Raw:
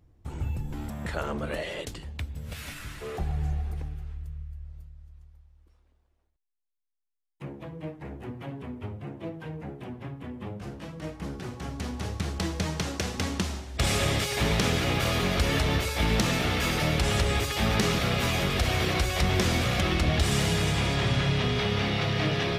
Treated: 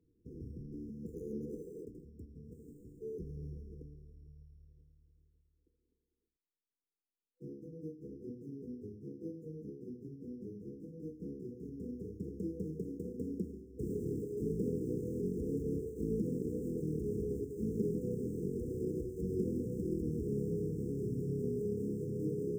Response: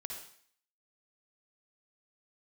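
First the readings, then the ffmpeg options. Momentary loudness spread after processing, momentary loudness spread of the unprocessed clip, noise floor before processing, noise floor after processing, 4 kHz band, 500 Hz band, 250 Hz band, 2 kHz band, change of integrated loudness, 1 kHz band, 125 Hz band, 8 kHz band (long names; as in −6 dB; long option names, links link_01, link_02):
14 LU, 15 LU, −75 dBFS, below −85 dBFS, below −40 dB, −6.5 dB, −6.5 dB, below −40 dB, −12.0 dB, below −40 dB, −13.0 dB, below −25 dB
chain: -filter_complex "[0:a]acrusher=samples=8:mix=1:aa=0.000001,acrossover=split=170 2100:gain=0.158 1 0.0631[link_01][link_02][link_03];[link_01][link_02][link_03]amix=inputs=3:normalize=0,afftfilt=real='re*(1-between(b*sr/4096,500,5100))':imag='im*(1-between(b*sr/4096,500,5100))':win_size=4096:overlap=0.75,volume=-4dB"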